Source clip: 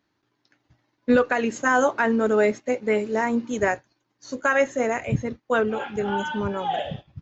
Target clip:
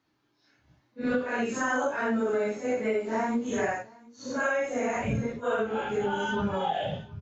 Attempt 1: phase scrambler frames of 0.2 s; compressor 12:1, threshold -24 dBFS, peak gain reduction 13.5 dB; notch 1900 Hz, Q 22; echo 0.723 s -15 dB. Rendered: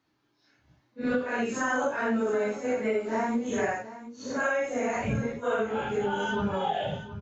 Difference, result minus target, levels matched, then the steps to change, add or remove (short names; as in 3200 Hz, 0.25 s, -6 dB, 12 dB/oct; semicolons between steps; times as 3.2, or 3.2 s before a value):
echo-to-direct +9.5 dB
change: echo 0.723 s -24.5 dB